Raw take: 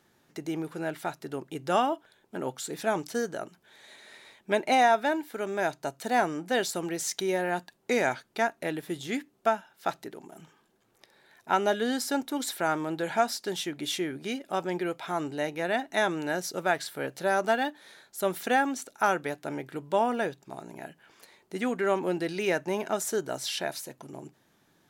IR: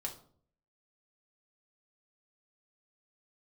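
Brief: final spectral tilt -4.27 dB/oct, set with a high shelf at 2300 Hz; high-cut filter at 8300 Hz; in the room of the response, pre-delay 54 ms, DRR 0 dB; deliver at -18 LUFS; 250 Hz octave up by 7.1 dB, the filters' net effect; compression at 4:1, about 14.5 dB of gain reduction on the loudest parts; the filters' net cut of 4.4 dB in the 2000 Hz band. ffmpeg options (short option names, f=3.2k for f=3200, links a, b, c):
-filter_complex "[0:a]lowpass=8.3k,equalizer=f=250:t=o:g=9,equalizer=f=2k:t=o:g=-8.5,highshelf=f=2.3k:g=5,acompressor=threshold=-36dB:ratio=4,asplit=2[a][b];[1:a]atrim=start_sample=2205,adelay=54[c];[b][c]afir=irnorm=-1:irlink=0,volume=0.5dB[d];[a][d]amix=inputs=2:normalize=0,volume=17.5dB"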